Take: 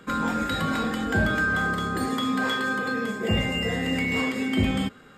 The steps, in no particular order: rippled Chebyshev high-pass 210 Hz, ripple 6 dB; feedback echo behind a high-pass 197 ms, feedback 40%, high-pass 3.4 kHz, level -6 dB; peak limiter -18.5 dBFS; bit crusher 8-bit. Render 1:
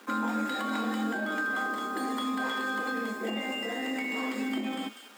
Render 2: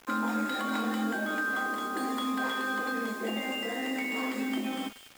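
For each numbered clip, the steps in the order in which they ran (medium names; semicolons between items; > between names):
bit crusher > feedback echo behind a high-pass > peak limiter > rippled Chebyshev high-pass; peak limiter > rippled Chebyshev high-pass > bit crusher > feedback echo behind a high-pass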